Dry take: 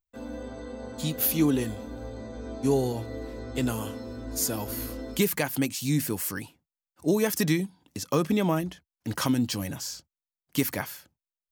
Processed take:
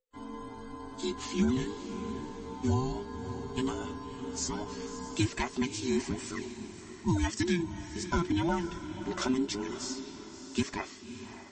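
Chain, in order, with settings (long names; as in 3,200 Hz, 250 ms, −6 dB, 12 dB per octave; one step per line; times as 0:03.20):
frequency inversion band by band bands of 500 Hz
feedback delay with all-pass diffusion 588 ms, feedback 45%, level −11 dB
level −4 dB
MP3 32 kbit/s 24,000 Hz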